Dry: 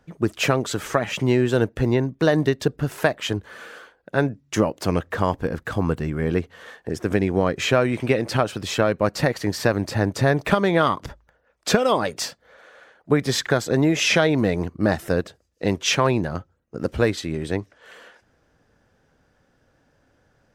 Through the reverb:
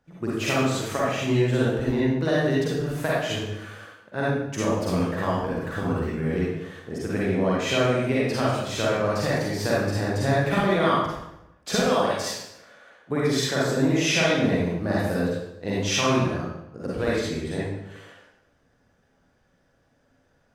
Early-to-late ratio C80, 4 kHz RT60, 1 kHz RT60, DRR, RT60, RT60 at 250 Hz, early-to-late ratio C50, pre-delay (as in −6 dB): 1.5 dB, 0.70 s, 0.85 s, −7.5 dB, 0.85 s, 1.0 s, −4.5 dB, 40 ms